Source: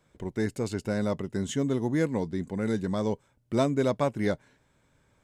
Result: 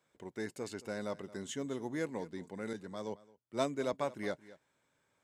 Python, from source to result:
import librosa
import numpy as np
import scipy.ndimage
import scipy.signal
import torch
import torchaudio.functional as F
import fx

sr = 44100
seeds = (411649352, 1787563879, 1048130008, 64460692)

p1 = fx.highpass(x, sr, hz=440.0, slope=6)
p2 = p1 + fx.echo_single(p1, sr, ms=221, db=-18.5, dry=0)
p3 = fx.band_widen(p2, sr, depth_pct=70, at=(2.73, 3.93))
y = p3 * 10.0 ** (-6.5 / 20.0)